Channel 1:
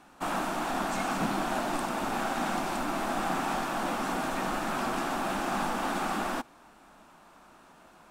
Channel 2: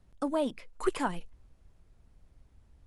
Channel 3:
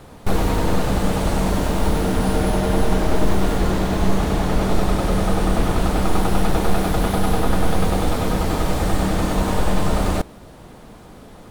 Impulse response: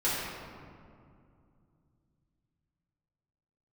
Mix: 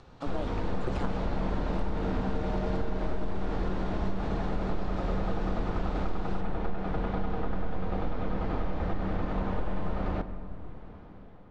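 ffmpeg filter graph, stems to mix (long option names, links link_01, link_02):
-filter_complex "[0:a]equalizer=frequency=4000:width_type=o:width=0.84:gain=9.5,acompressor=threshold=-42dB:ratio=2,volume=-8dB[link_01];[1:a]acompressor=mode=upward:threshold=-42dB:ratio=2.5,tremolo=f=130:d=0.947,volume=-2dB[link_02];[2:a]dynaudnorm=framelen=140:gausssize=9:maxgain=8dB,lowpass=2200,volume=-14.5dB,asplit=2[link_03][link_04];[link_04]volume=-21dB[link_05];[3:a]atrim=start_sample=2205[link_06];[link_05][link_06]afir=irnorm=-1:irlink=0[link_07];[link_01][link_02][link_03][link_07]amix=inputs=4:normalize=0,lowpass=frequency=6600:width=0.5412,lowpass=frequency=6600:width=1.3066,acompressor=threshold=-24dB:ratio=6"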